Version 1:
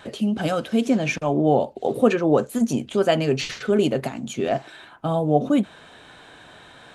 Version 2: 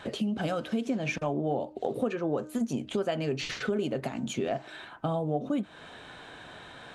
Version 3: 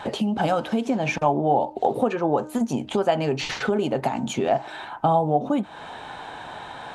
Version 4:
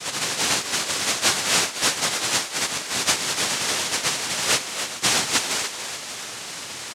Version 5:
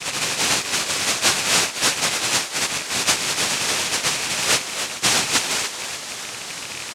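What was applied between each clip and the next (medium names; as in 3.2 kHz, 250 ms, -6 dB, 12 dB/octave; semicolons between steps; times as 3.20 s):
treble shelf 7.5 kHz -7.5 dB; de-hum 307.1 Hz, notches 6; compression 4:1, threshold -28 dBFS, peak gain reduction 14.5 dB
peaking EQ 860 Hz +13 dB 0.54 oct; trim +5.5 dB
partials quantised in pitch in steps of 6 st; noise-vocoded speech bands 1; frequency-shifting echo 290 ms, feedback 47%, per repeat +110 Hz, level -9 dB; trim -4 dB
rattle on loud lows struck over -46 dBFS, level -21 dBFS; trim +2 dB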